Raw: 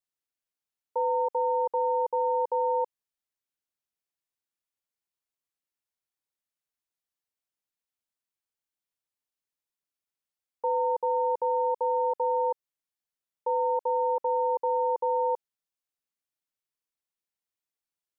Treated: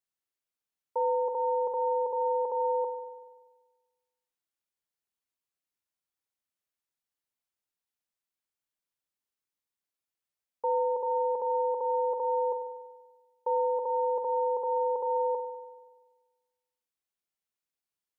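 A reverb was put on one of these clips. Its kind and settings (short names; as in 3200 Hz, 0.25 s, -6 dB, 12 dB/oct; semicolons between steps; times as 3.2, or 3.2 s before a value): spring tank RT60 1.3 s, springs 48 ms, chirp 75 ms, DRR 7.5 dB; gain -1.5 dB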